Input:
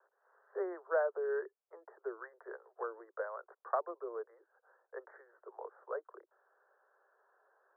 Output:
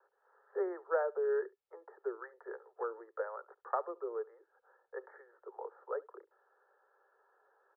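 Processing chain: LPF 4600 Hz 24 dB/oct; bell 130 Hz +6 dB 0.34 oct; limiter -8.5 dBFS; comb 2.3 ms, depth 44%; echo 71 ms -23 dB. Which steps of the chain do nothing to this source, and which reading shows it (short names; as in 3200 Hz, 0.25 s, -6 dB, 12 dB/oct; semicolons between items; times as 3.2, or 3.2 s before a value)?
LPF 4600 Hz: input band ends at 1900 Hz; bell 130 Hz: input band starts at 320 Hz; limiter -8.5 dBFS: input peak -20.0 dBFS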